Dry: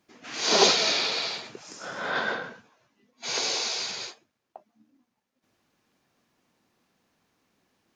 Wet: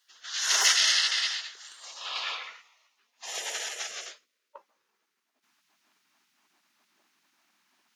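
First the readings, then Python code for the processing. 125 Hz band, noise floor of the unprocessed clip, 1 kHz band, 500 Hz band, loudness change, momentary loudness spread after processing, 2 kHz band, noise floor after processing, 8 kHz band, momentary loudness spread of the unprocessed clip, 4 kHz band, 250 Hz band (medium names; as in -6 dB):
under -35 dB, -80 dBFS, -7.5 dB, -17.5 dB, -1.0 dB, 23 LU, -0.5 dB, -80 dBFS, +2.5 dB, 20 LU, -1.0 dB, under -25 dB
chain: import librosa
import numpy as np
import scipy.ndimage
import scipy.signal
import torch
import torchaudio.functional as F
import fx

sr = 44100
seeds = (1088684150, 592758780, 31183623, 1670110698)

y = fx.cheby_harmonics(x, sr, harmonics=(6,), levels_db=(-26,), full_scale_db=-4.5)
y = fx.filter_sweep_highpass(y, sr, from_hz=2300.0, to_hz=490.0, start_s=1.99, end_s=5.46, q=5.4)
y = fx.spec_gate(y, sr, threshold_db=-15, keep='weak')
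y = y * librosa.db_to_amplitude(4.5)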